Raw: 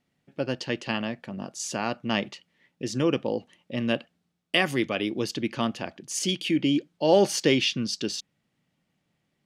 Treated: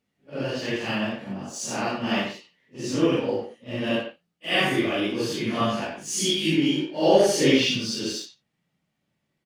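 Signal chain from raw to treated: phase randomisation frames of 200 ms; in parallel at -3.5 dB: crossover distortion -43 dBFS; 5.29–7.08 s: on the sum: doubling 19 ms -3.5 dB; speakerphone echo 90 ms, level -8 dB; trim -2 dB

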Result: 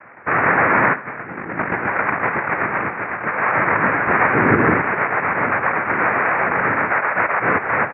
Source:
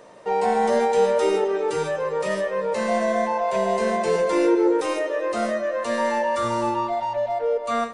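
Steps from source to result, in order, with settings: noise-vocoded speech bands 3; 0.93–3.39 s: compressor with a negative ratio -27 dBFS, ratio -0.5; steep low-pass 2.4 kHz 72 dB/octave; tilt shelf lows -3.5 dB, about 940 Hz; feedback delay 77 ms, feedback 54%, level -19 dB; trim +5 dB

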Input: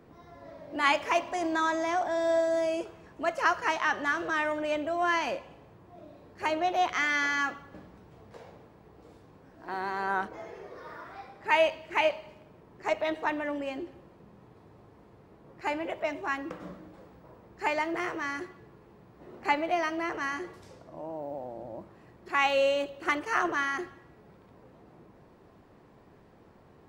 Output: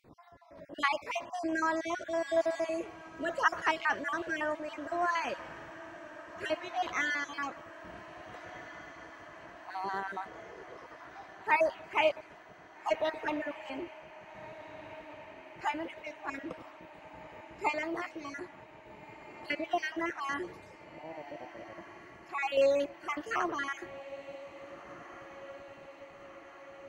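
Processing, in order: random holes in the spectrogram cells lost 39%; random-step tremolo; echo that smears into a reverb 1684 ms, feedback 71%, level -16 dB

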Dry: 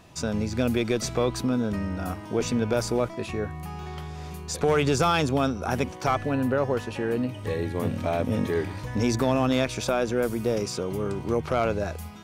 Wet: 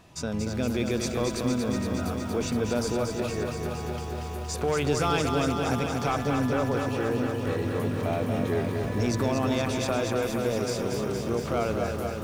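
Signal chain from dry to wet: in parallel at -2 dB: peak limiter -18.5 dBFS, peak gain reduction 7 dB; on the sum: bit-crushed delay 233 ms, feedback 80%, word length 8-bit, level -5 dB; trim -7.5 dB

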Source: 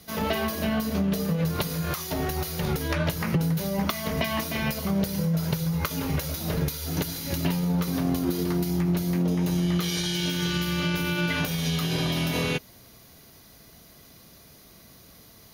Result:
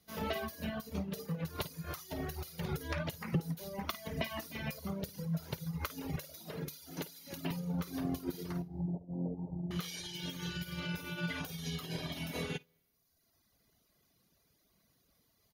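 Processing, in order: 8.62–9.71 s: Chebyshev low-pass 870 Hz, order 5; early reflections 53 ms -8 dB, 74 ms -16 dB; on a send at -21 dB: reverberation RT60 0.80 s, pre-delay 162 ms; on the sum: reverb removal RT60 1.4 s; 6.16–7.51 s: high-pass 180 Hz 12 dB/octave; upward expansion 1.5:1, over -46 dBFS; trim -6.5 dB

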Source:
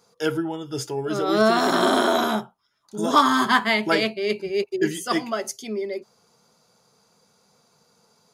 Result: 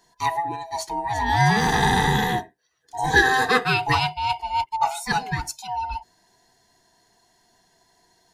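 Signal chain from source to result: split-band scrambler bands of 500 Hz

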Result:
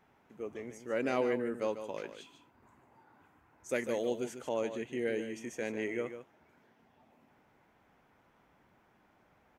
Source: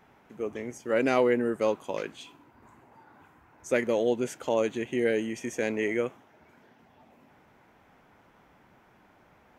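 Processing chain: 3.69–4.26 s: treble shelf 6 kHz +11 dB; delay 147 ms -10 dB; trim -8 dB

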